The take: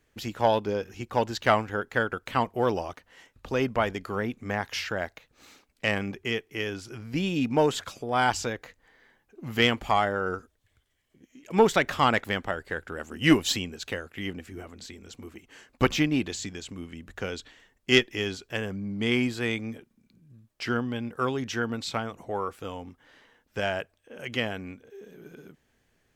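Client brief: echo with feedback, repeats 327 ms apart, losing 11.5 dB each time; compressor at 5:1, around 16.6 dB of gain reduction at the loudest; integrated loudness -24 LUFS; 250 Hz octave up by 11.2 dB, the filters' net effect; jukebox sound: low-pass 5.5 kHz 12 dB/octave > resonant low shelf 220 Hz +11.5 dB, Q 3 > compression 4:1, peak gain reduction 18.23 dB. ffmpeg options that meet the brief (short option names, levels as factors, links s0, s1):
-af "equalizer=f=250:t=o:g=8.5,acompressor=threshold=0.0447:ratio=5,lowpass=5500,lowshelf=f=220:t=q:w=3:g=11.5,aecho=1:1:327|654|981:0.266|0.0718|0.0194,acompressor=threshold=0.0178:ratio=4,volume=5.01"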